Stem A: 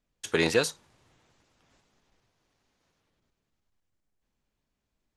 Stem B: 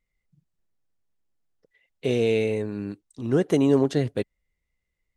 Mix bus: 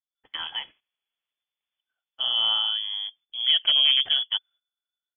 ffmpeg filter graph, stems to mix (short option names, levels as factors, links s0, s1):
-filter_complex "[0:a]volume=0.376,asplit=2[s0][s1];[1:a]aeval=exprs='0.237*(abs(mod(val(0)/0.237+3,4)-2)-1)':c=same,adelay=150,volume=1[s2];[s1]apad=whole_len=234258[s3];[s2][s3]sidechaincompress=threshold=0.00447:ratio=8:attack=25:release=1440[s4];[s0][s4]amix=inputs=2:normalize=0,lowpass=f=3000:t=q:w=0.5098,lowpass=f=3000:t=q:w=0.6013,lowpass=f=3000:t=q:w=0.9,lowpass=f=3000:t=q:w=2.563,afreqshift=-3500,agate=range=0.178:threshold=0.00251:ratio=16:detection=peak"